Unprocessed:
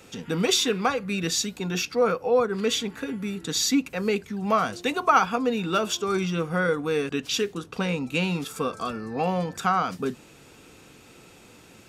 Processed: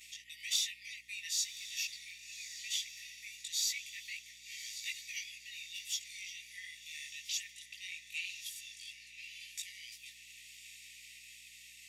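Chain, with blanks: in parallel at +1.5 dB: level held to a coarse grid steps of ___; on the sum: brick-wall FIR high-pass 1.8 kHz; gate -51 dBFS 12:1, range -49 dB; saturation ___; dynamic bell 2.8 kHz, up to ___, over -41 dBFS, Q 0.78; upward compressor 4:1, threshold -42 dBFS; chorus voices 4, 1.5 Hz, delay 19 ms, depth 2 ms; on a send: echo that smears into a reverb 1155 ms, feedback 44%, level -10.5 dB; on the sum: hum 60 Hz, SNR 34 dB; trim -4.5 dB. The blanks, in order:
19 dB, -8.5 dBFS, -5 dB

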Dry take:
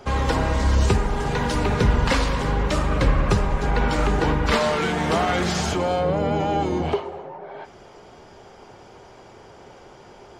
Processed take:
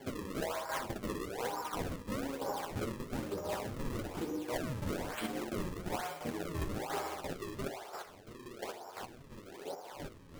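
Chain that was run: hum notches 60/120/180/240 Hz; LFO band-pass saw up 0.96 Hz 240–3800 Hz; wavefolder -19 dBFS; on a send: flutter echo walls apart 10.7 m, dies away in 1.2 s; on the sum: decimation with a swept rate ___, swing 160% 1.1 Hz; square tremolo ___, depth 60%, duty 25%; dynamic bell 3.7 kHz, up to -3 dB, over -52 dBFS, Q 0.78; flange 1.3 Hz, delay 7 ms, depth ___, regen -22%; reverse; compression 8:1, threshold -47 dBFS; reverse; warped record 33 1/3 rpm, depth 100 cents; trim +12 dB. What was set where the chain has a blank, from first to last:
34×, 2.9 Hz, 5 ms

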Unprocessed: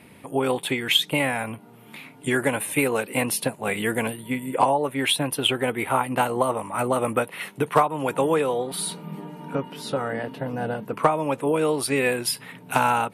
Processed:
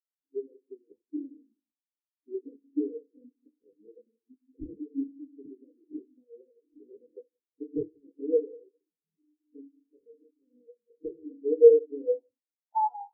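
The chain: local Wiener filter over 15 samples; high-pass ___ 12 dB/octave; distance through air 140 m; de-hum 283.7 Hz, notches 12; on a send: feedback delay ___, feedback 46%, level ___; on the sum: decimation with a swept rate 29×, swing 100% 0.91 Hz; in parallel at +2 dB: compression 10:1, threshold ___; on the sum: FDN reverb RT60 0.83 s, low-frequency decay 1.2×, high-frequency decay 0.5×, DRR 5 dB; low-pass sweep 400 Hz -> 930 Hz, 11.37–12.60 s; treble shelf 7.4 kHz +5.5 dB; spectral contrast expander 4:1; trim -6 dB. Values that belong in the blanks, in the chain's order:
210 Hz, 181 ms, -14.5 dB, -33 dBFS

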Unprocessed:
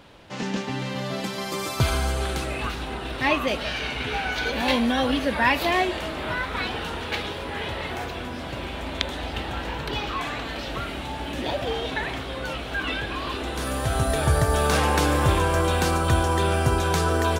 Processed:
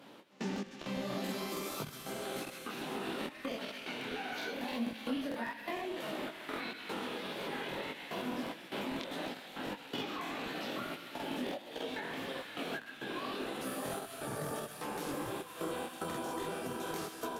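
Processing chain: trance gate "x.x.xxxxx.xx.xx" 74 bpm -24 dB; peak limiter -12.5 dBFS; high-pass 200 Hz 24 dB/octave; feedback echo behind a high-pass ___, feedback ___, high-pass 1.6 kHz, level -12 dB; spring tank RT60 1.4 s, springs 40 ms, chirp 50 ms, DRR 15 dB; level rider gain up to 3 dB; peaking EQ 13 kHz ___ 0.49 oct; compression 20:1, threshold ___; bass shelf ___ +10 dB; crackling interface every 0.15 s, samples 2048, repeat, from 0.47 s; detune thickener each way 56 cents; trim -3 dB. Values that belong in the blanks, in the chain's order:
128 ms, 75%, +10 dB, -31 dBFS, 310 Hz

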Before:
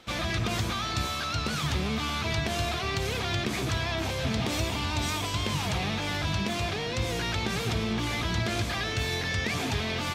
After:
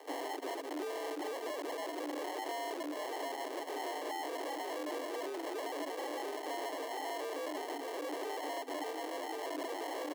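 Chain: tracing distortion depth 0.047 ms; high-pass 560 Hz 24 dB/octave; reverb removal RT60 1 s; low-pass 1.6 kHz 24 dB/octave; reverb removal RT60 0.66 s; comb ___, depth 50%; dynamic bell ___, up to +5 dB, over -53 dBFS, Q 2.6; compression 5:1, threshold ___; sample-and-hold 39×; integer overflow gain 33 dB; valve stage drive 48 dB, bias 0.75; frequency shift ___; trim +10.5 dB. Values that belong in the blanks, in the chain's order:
5.4 ms, 750 Hz, -36 dBFS, +260 Hz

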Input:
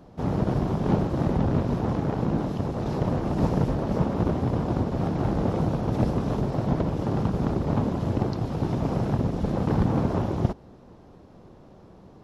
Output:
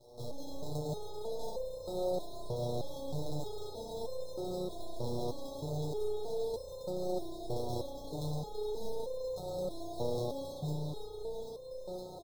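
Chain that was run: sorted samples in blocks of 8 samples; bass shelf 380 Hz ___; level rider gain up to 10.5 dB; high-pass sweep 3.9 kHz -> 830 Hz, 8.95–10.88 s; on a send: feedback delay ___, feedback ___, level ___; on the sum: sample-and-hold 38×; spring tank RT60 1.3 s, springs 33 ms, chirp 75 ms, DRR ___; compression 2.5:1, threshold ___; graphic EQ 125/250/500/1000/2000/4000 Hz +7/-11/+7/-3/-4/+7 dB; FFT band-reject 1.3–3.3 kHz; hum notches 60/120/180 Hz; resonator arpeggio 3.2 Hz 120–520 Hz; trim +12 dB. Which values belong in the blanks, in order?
-9.5 dB, 510 ms, 41%, -4 dB, -5 dB, -44 dBFS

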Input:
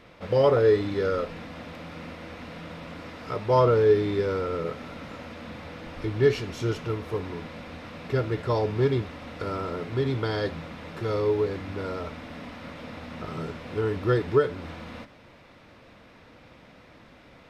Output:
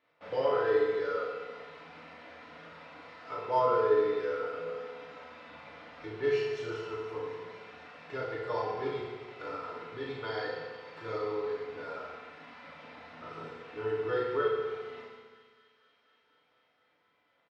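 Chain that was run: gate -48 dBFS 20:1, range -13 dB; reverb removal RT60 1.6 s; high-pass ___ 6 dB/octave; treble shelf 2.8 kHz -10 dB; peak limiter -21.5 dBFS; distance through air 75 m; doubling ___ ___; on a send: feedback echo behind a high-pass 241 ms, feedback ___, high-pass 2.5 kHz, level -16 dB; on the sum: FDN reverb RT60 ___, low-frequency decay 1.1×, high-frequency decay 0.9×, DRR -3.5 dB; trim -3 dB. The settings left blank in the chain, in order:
1.3 kHz, 38 ms, -3 dB, 80%, 1.6 s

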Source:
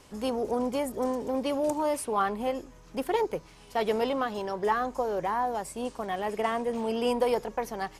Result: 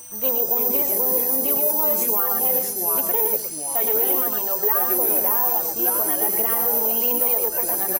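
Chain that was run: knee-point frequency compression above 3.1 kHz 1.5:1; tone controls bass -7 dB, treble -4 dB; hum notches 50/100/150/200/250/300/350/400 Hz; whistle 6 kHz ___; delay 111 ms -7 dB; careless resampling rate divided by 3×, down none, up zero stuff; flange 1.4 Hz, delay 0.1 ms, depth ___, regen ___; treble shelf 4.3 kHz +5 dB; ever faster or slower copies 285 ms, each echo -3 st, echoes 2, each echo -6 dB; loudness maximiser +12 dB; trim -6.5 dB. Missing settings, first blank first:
-48 dBFS, 2.4 ms, +53%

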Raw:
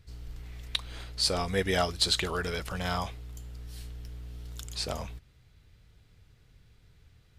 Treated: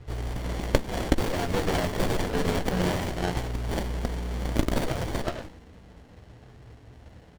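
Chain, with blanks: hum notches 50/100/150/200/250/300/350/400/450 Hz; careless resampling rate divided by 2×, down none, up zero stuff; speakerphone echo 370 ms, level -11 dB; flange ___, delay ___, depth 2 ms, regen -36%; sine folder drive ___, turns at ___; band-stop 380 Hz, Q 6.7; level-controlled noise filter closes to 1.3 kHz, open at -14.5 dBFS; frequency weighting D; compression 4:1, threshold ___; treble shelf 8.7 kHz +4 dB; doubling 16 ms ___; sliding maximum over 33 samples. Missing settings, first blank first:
0.6 Hz, 2.4 ms, 19 dB, -7 dBFS, -23 dBFS, -10.5 dB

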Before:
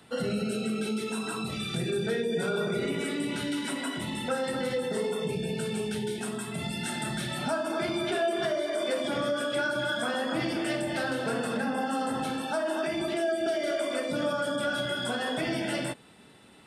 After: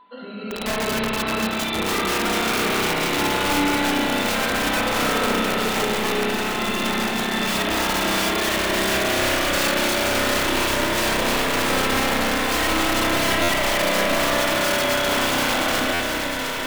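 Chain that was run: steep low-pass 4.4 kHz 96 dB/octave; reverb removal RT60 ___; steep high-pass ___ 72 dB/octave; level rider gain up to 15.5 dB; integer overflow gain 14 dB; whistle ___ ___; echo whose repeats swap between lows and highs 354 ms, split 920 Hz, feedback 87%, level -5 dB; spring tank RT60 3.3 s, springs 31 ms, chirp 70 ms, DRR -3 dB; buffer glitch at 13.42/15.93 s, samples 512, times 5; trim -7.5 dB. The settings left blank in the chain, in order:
1 s, 190 Hz, 1 kHz, -40 dBFS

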